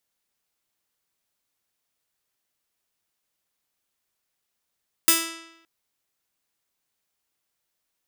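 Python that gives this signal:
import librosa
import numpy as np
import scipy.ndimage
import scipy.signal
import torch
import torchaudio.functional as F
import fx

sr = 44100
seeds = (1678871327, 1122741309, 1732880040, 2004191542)

y = fx.pluck(sr, length_s=0.57, note=64, decay_s=0.9, pick=0.42, brightness='bright')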